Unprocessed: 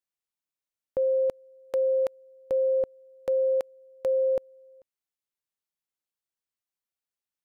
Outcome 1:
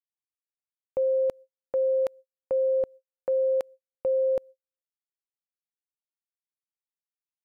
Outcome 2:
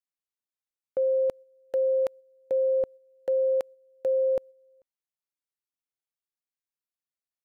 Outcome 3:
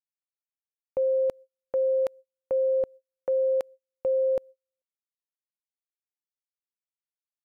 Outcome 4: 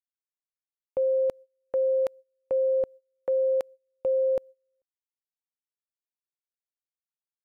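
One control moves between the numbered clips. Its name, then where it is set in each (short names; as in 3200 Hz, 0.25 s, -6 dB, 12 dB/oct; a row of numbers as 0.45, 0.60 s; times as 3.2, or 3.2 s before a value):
gate, range: -52, -7, -39, -24 dB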